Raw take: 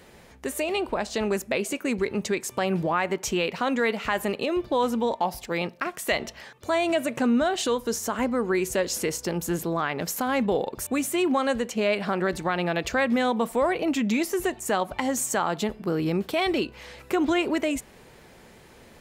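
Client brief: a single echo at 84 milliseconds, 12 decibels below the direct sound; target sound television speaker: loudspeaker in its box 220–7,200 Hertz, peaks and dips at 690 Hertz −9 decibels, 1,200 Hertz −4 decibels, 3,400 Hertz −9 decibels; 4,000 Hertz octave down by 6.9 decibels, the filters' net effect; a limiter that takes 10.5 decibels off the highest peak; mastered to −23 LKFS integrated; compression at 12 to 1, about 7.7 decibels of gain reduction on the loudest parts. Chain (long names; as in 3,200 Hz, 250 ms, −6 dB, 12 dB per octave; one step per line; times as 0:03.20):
parametric band 4,000 Hz −4.5 dB
downward compressor 12 to 1, threshold −27 dBFS
brickwall limiter −24.5 dBFS
loudspeaker in its box 220–7,200 Hz, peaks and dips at 690 Hz −9 dB, 1,200 Hz −4 dB, 3,400 Hz −9 dB
single-tap delay 84 ms −12 dB
level +13 dB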